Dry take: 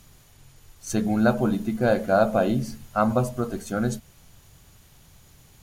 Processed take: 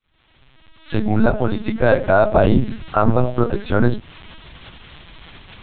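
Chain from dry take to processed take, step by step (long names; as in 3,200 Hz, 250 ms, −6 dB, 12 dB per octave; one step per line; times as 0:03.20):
fade in at the beginning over 1.77 s
0:01.35–0:02.36: high-pass filter 370 Hz 6 dB per octave
linear-prediction vocoder at 8 kHz pitch kept
boost into a limiter +11.5 dB
one half of a high-frequency compander encoder only
level −1 dB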